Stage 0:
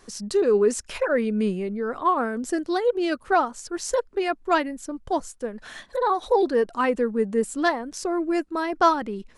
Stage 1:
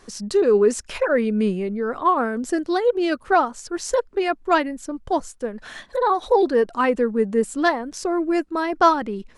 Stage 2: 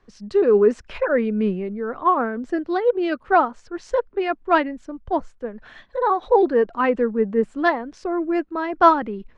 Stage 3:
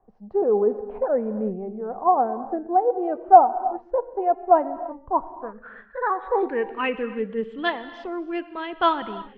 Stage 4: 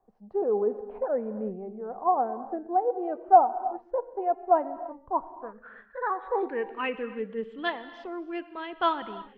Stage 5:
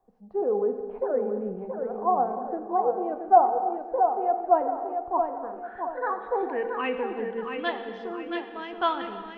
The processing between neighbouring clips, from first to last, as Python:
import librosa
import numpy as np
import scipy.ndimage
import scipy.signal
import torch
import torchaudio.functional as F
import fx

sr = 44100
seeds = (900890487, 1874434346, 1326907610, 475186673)

y1 = fx.high_shelf(x, sr, hz=7200.0, db=-4.5)
y1 = y1 * 10.0 ** (3.0 / 20.0)
y2 = scipy.signal.sosfilt(scipy.signal.butter(2, 2700.0, 'lowpass', fs=sr, output='sos'), y1)
y2 = fx.band_widen(y2, sr, depth_pct=40)
y3 = fx.filter_sweep_lowpass(y2, sr, from_hz=770.0, to_hz=3200.0, start_s=4.59, end_s=7.15, q=6.9)
y3 = fx.rev_gated(y3, sr, seeds[0], gate_ms=360, shape='flat', drr_db=12.0)
y3 = y3 * 10.0 ** (-7.5 / 20.0)
y4 = fx.low_shelf(y3, sr, hz=150.0, db=-6.0)
y4 = y4 * 10.0 ** (-5.0 / 20.0)
y5 = fx.echo_feedback(y4, sr, ms=676, feedback_pct=39, wet_db=-6)
y5 = fx.rev_fdn(y5, sr, rt60_s=1.5, lf_ratio=1.0, hf_ratio=0.9, size_ms=12.0, drr_db=9.0)